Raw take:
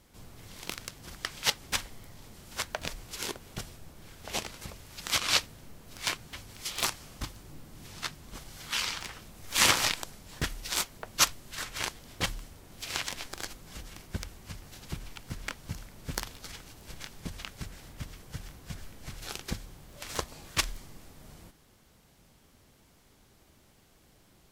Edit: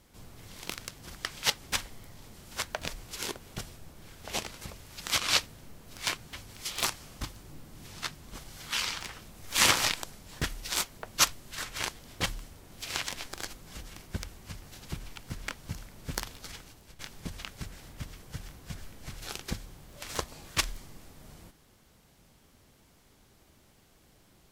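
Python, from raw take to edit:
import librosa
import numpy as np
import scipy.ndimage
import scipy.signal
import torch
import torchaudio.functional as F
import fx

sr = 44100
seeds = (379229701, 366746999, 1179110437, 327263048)

y = fx.edit(x, sr, fx.fade_out_to(start_s=16.56, length_s=0.43, floor_db=-12.0), tone=tone)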